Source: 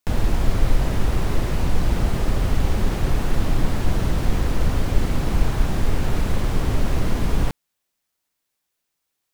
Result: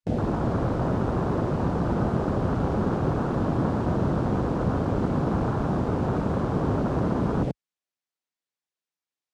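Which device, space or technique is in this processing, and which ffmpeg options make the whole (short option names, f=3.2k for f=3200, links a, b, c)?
over-cleaned archive recording: -af "highpass=130,lowpass=7.1k,afwtdn=0.0316,volume=3.5dB"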